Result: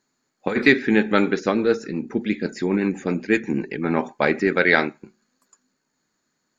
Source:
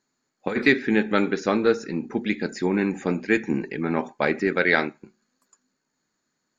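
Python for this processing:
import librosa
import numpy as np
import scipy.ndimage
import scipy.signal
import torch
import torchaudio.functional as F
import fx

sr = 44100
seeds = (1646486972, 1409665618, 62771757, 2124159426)

y = fx.rotary(x, sr, hz=8.0, at=(1.39, 3.85))
y = y * librosa.db_to_amplitude(3.0)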